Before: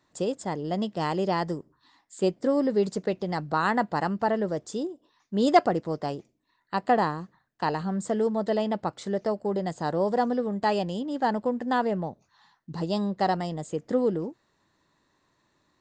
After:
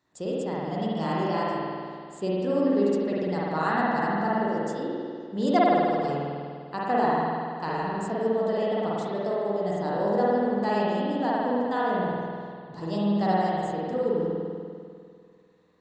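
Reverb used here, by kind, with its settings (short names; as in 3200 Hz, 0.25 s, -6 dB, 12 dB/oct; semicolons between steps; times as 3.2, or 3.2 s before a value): spring tank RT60 2.2 s, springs 49 ms, chirp 30 ms, DRR -6.5 dB; gain -6.5 dB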